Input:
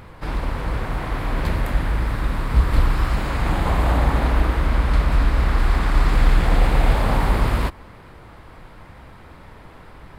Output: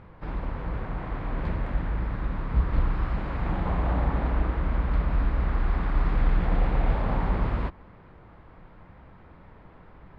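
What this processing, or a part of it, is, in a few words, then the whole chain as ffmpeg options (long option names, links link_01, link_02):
phone in a pocket: -af "lowpass=3600,equalizer=frequency=180:width_type=o:width=0.22:gain=5.5,highshelf=frequency=2400:gain=-9,volume=-7dB"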